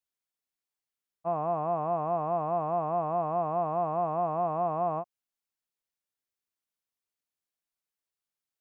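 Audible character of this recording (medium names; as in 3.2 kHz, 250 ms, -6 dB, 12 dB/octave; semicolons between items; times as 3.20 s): noise floor -91 dBFS; spectral tilt +1.5 dB/octave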